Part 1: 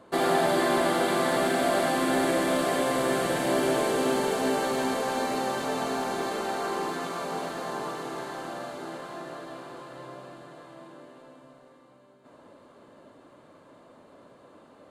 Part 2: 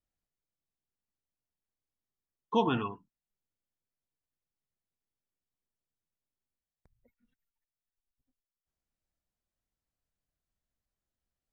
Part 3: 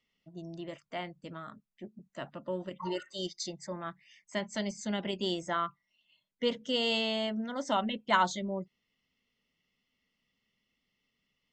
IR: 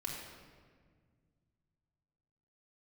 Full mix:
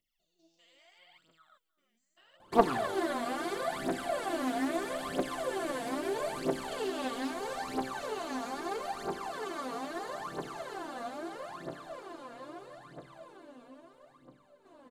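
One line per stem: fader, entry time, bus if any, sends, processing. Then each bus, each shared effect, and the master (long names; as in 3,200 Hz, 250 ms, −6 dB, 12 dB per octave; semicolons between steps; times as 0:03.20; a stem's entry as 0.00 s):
−10.0 dB, 2.40 s, bus A, send −9 dB, no echo send, no processing
−3.5 dB, 0.00 s, no bus, no send, no echo send, phaser with staggered stages 0.54 Hz
−3.0 dB, 0.00 s, bus A, no send, echo send −21 dB, spectrum averaged block by block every 200 ms; first difference
bus A: 0.0 dB, downward compressor, threshold −41 dBFS, peak gain reduction 11 dB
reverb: on, RT60 1.8 s, pre-delay 3 ms
echo: single-tap delay 312 ms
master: phase shifter 0.77 Hz, delay 4.4 ms, feedback 78%; highs frequency-modulated by the lows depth 0.28 ms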